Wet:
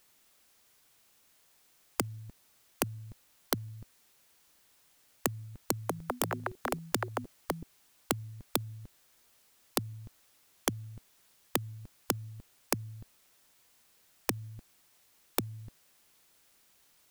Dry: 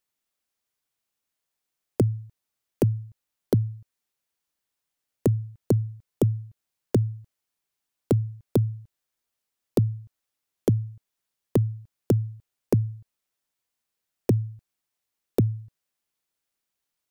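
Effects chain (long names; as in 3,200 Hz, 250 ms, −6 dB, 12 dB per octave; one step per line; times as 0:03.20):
brickwall limiter −17.5 dBFS, peak gain reduction 7 dB
0:05.59–0:08.30: delay with pitch and tempo change per echo 229 ms, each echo +7 semitones, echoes 3, each echo −6 dB
every bin compressed towards the loudest bin 4 to 1
level +7.5 dB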